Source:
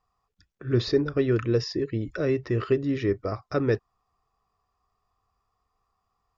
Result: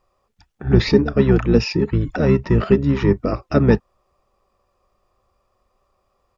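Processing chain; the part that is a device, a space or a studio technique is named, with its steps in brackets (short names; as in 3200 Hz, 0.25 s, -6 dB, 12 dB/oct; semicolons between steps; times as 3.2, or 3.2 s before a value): octave pedal (harmoniser -12 st -1 dB); gain +6.5 dB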